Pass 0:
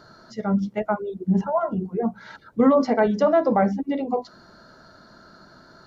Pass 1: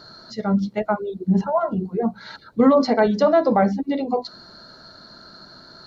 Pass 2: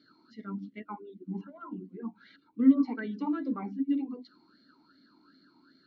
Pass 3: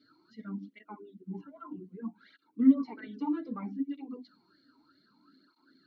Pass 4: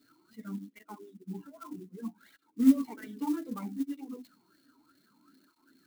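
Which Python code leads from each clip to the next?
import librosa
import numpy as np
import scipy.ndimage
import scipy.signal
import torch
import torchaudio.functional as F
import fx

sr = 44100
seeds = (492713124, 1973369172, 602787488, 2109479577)

y1 = fx.peak_eq(x, sr, hz=4200.0, db=13.0, octaves=0.32)
y1 = F.gain(torch.from_numpy(y1), 2.0).numpy()
y2 = fx.vowel_sweep(y1, sr, vowels='i-u', hz=2.6)
y2 = F.gain(torch.from_numpy(y2), -2.5).numpy()
y3 = fx.flanger_cancel(y2, sr, hz=0.63, depth_ms=5.8)
y4 = fx.clock_jitter(y3, sr, seeds[0], jitter_ms=0.032)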